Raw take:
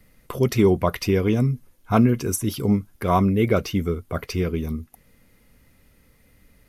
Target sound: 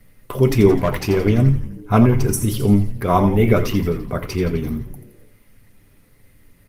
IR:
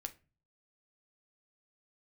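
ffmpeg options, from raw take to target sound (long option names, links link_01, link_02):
-filter_complex "[0:a]asettb=1/sr,asplit=3[link_01][link_02][link_03];[link_01]atrim=end=0.704[link_04];[link_02]atrim=start=0.7:end=1.18,asetpts=PTS-STARTPTS,afade=type=in:duration=0.004:curve=qsin,afade=type=out:start_time=0.476:duration=0.004:curve=qsin,volume=16.5dB,asoftclip=hard,volume=-16.5dB[link_05];[link_03]atrim=start=1.176[link_06];[link_04][link_05]acrossfade=duration=0.004:curve1=hsin:curve2=qsin[link_07];[link_07][link_06]acrossfade=duration=0.004:curve1=qsin:curve2=hsin,asettb=1/sr,asplit=3[link_08][link_09][link_10];[link_08]atrim=end=3.274[link_11];[link_09]atrim=start=3.27:end=3.94,asetpts=PTS-STARTPTS,afade=type=in:duration=0.004:curve=qsin,afade=type=out:start_time=0.666:duration=0.004:curve=qsin,highshelf=frequency=11000:gain=5.5[link_12];[link_10]atrim=start=3.936[link_13];[link_11][link_12]acrossfade=duration=0.004:curve1=hsin:curve2=qsin[link_14];[link_14][link_13]acrossfade=duration=0.004:curve1=qsin:curve2=hsin,asplit=7[link_15][link_16][link_17][link_18][link_19][link_20][link_21];[link_16]adelay=85,afreqshift=-110,volume=-10dB[link_22];[link_17]adelay=170,afreqshift=-220,volume=-15.2dB[link_23];[link_18]adelay=255,afreqshift=-330,volume=-20.4dB[link_24];[link_19]adelay=340,afreqshift=-440,volume=-25.6dB[link_25];[link_20]adelay=425,afreqshift=-550,volume=-30.8dB[link_26];[link_21]adelay=510,afreqshift=-660,volume=-36dB[link_27];[link_15][link_22][link_23][link_24][link_25][link_26][link_27]amix=inputs=7:normalize=0[link_28];[1:a]atrim=start_sample=2205,asetrate=52920,aresample=44100[link_29];[link_28][link_29]afir=irnorm=-1:irlink=0,volume=8dB" -ar 48000 -c:a libopus -b:a 24k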